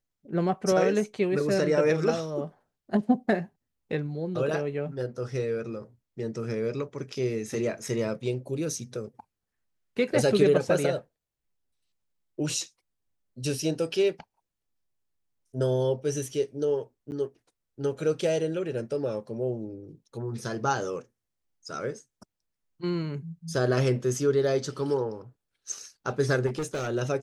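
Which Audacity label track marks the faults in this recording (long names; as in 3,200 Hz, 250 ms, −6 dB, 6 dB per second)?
17.110000	17.120000	drop-out 9.7 ms
26.460000	26.890000	clipping −27 dBFS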